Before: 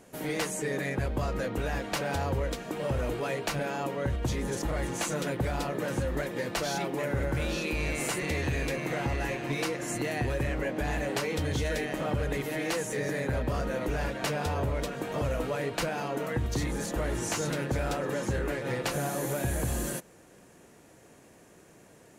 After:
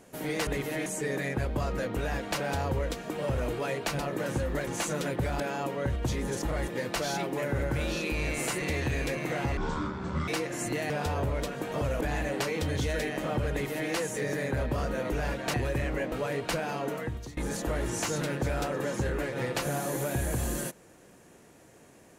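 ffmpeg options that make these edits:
-filter_complex "[0:a]asplit=14[s0][s1][s2][s3][s4][s5][s6][s7][s8][s9][s10][s11][s12][s13];[s0]atrim=end=0.472[s14];[s1]atrim=start=12.268:end=12.662[s15];[s2]atrim=start=0.468:end=3.602[s16];[s3]atrim=start=5.608:end=6.292[s17];[s4]atrim=start=4.878:end=5.612[s18];[s5]atrim=start=3.598:end=4.882[s19];[s6]atrim=start=6.288:end=9.184[s20];[s7]atrim=start=9.18:end=9.57,asetpts=PTS-STARTPTS,asetrate=24255,aresample=44100[s21];[s8]atrim=start=9.566:end=10.192[s22];[s9]atrim=start=14.298:end=15.412[s23];[s10]atrim=start=10.768:end=14.302[s24];[s11]atrim=start=10.188:end=10.772[s25];[s12]atrim=start=15.408:end=16.66,asetpts=PTS-STARTPTS,afade=t=out:st=0.752:d=0.5:silence=0.0749894[s26];[s13]atrim=start=16.66,asetpts=PTS-STARTPTS,afade=t=in:d=0.004:c=hsin:silence=0.0749894[s27];[s14][s15]acrossfade=d=0.004:c1=hsin:c2=hsin[s28];[s28][s16]acrossfade=d=0.004:c1=hsin:c2=hsin[s29];[s29][s17]acrossfade=d=0.004:c1=hsin:c2=hsin[s30];[s30][s18]acrossfade=d=0.004:c1=hsin:c2=hsin[s31];[s31][s19]acrossfade=d=0.004:c1=hsin:c2=hsin[s32];[s32][s20]acrossfade=d=0.004:c1=hsin:c2=hsin[s33];[s33][s21]acrossfade=d=0.004:c1=hsin:c2=hsin[s34];[s34][s22]acrossfade=d=0.004:c1=hsin:c2=hsin[s35];[s35][s23]acrossfade=d=0.004:c1=hsin:c2=hsin[s36];[s36][s24]acrossfade=d=0.004:c1=hsin:c2=hsin[s37];[s37][s25]acrossfade=d=0.004:c1=hsin:c2=hsin[s38];[s26][s27]concat=n=2:v=0:a=1[s39];[s38][s39]acrossfade=d=0.004:c1=hsin:c2=hsin"

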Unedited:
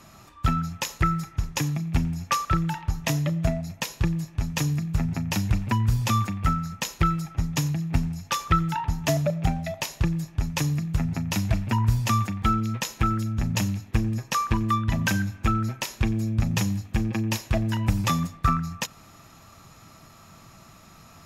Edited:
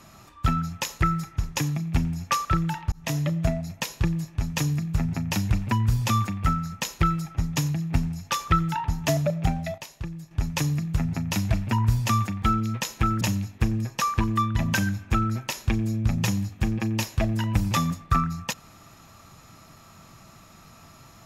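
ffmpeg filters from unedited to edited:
-filter_complex "[0:a]asplit=5[s0][s1][s2][s3][s4];[s0]atrim=end=2.92,asetpts=PTS-STARTPTS,afade=t=out:st=2.916:d=0.004:c=hsin[s5];[s1]atrim=start=2.92:end=9.782,asetpts=PTS-STARTPTS,afade=t=in:d=0.36:c=qsin[s6];[s2]atrim=start=9.778:end=10.312,asetpts=PTS-STARTPTS,volume=0.316[s7];[s3]atrim=start=10.308:end=13.212[s8];[s4]atrim=start=13.538[s9];[s5][s6]concat=n=2:v=0:a=1[s10];[s10][s7]acrossfade=d=0.004:c1=hsin:c2=hsin[s11];[s11][s8]acrossfade=d=0.004:c1=hsin:c2=hsin[s12];[s12][s9]acrossfade=d=0.004:c1=hsin:c2=hsin"

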